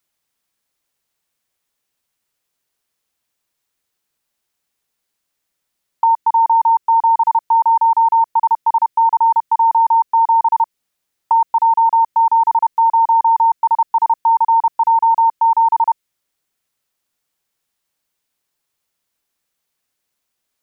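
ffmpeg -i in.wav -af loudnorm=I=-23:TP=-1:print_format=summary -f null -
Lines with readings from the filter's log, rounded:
Input Integrated:    -14.3 LUFS
Input True Peak:      -3.5 dBTP
Input LRA:             4.3 LU
Input Threshold:     -24.4 LUFS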